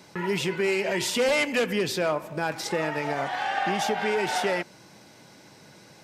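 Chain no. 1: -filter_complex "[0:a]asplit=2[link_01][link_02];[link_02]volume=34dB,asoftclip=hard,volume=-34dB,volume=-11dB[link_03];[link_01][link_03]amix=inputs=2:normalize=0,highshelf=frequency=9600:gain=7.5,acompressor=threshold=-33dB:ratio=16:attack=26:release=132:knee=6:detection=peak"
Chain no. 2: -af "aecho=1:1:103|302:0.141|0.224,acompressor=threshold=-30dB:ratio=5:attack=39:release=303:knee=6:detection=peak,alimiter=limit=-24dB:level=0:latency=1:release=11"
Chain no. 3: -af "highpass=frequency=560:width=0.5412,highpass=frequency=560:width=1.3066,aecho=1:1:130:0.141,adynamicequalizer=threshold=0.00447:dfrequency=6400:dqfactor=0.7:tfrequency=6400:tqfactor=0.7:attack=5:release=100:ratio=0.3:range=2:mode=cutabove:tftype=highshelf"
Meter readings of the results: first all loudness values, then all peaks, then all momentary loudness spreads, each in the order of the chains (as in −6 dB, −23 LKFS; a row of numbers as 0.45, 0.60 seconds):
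−34.0, −32.5, −28.5 LKFS; −21.0, −24.0, −12.5 dBFS; 15, 19, 6 LU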